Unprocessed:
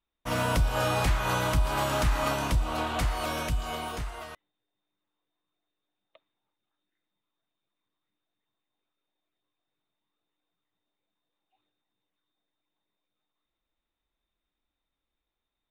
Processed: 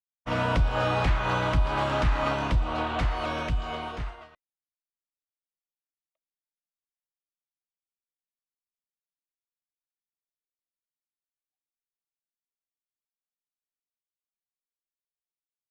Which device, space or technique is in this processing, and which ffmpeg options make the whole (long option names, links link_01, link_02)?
hearing-loss simulation: -af "lowpass=3500,agate=range=-33dB:threshold=-33dB:ratio=3:detection=peak,volume=1.5dB"